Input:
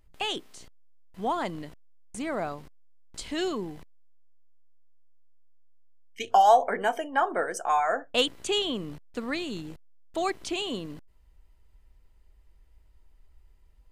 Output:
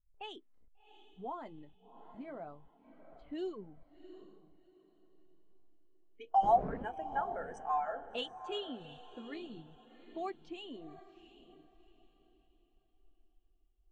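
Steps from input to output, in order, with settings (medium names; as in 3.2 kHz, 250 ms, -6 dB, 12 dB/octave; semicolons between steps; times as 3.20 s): 6.42–7.21 s: wind noise 540 Hz -18 dBFS; in parallel at +0.5 dB: compression, threshold -39 dBFS, peak gain reduction 23 dB; on the sum: level-controlled noise filter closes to 670 Hz, open at -23.5 dBFS; flange 0.27 Hz, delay 1.2 ms, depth 8.7 ms, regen -46%; on a send: echo that smears into a reverb 731 ms, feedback 47%, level -8 dB; on the sum: spectral contrast expander 1.5:1; trim -5.5 dB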